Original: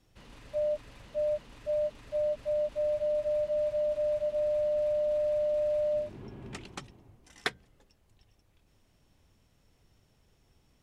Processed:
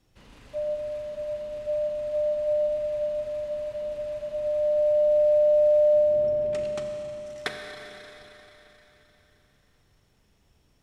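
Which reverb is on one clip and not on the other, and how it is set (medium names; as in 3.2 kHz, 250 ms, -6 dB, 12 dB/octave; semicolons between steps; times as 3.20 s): Schroeder reverb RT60 4 s, combs from 30 ms, DRR 2.5 dB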